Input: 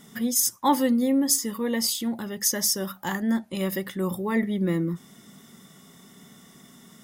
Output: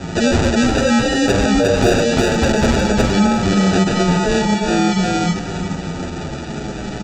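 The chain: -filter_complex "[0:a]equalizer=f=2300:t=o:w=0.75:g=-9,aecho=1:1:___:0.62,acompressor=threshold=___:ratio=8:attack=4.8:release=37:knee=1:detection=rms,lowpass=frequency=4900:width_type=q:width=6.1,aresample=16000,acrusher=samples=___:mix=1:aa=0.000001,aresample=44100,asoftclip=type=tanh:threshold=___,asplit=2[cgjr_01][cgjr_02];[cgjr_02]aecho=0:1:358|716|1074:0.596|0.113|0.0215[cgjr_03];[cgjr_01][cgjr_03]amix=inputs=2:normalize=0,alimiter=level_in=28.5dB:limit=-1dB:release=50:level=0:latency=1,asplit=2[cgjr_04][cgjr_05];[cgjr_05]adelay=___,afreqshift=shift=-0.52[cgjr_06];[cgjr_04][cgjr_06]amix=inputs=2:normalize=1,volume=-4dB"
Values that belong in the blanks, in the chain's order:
6.3, -29dB, 15, -19dB, 8.3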